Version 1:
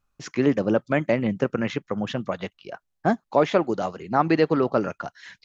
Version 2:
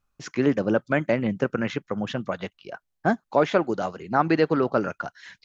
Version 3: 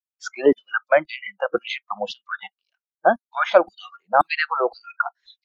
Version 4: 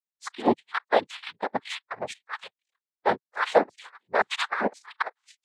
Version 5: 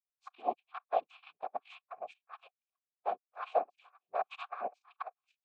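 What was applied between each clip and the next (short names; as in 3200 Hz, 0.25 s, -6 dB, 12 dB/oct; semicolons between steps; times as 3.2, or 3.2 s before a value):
dynamic EQ 1500 Hz, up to +6 dB, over -47 dBFS, Q 6.6; gain -1 dB
LFO high-pass saw down 1.9 Hz 350–4900 Hz; spectral noise reduction 29 dB; gain +3.5 dB
noise vocoder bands 6; gain -5.5 dB
vowel filter a; gain -3 dB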